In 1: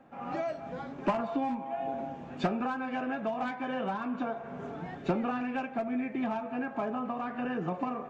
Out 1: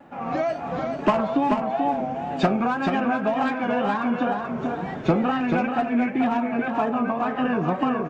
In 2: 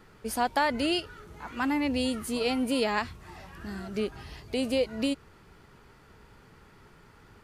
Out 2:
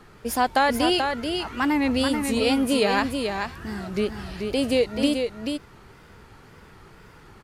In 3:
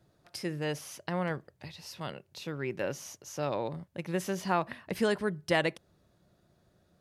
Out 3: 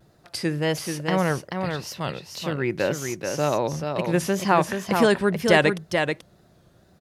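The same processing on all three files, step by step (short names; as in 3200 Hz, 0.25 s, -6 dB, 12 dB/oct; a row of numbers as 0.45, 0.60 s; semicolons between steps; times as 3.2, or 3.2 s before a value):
wow and flutter 99 cents; on a send: echo 0.434 s -5.5 dB; on the sum: match loudness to -24 LUFS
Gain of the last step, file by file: +9.0, +5.5, +9.5 dB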